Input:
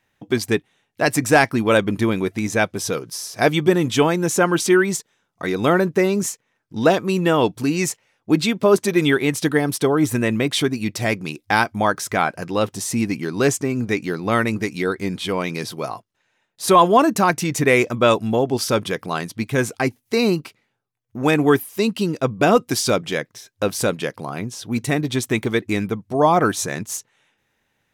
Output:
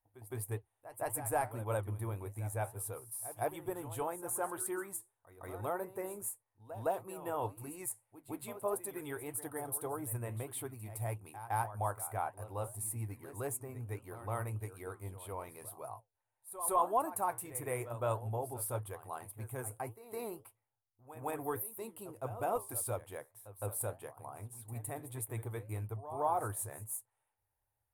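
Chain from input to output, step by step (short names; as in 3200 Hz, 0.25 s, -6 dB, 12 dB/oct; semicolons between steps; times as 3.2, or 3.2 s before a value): flange 1.7 Hz, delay 5.1 ms, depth 9.3 ms, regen -71%; EQ curve 110 Hz 0 dB, 160 Hz -27 dB, 880 Hz -5 dB, 1600 Hz -18 dB, 5900 Hz -29 dB, 9500 Hz +2 dB; pre-echo 0.162 s -13.5 dB; gain -4 dB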